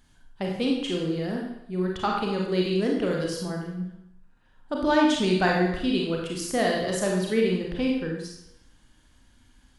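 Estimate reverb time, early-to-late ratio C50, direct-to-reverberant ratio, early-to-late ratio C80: 0.80 s, 2.5 dB, -1.0 dB, 5.0 dB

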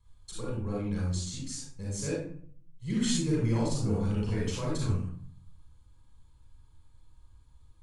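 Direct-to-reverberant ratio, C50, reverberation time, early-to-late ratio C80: -5.0 dB, -1.5 dB, 0.55 s, 3.5 dB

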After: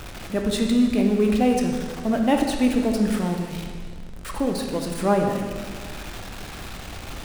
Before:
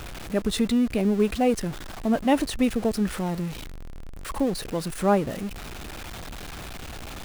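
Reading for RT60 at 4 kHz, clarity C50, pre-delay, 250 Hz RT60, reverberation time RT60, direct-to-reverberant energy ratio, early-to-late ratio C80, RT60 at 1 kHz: 1.6 s, 3.5 dB, 18 ms, 2.0 s, 1.7 s, 2.0 dB, 5.5 dB, 1.6 s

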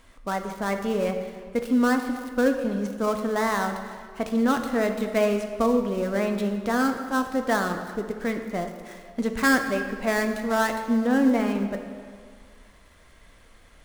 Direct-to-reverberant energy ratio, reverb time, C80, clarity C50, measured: 5.0 dB, 2.0 s, 8.0 dB, 7.0 dB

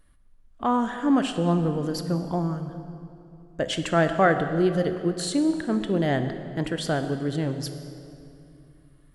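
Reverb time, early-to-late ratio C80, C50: 2.7 s, 9.5 dB, 9.0 dB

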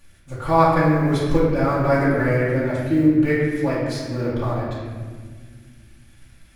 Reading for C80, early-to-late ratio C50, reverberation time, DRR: 1.5 dB, -1.0 dB, 1.7 s, -10.5 dB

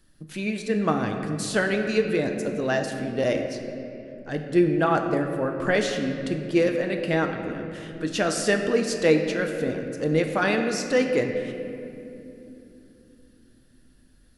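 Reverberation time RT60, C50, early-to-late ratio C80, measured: 2.9 s, 6.0 dB, 6.5 dB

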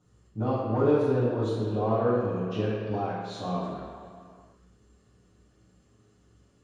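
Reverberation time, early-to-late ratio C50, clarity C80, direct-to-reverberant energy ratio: no single decay rate, -1.0 dB, 1.0 dB, -12.5 dB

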